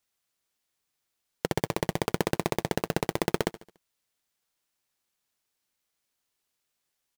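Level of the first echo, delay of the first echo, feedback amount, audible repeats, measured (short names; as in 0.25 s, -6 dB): -17.0 dB, 72 ms, 47%, 3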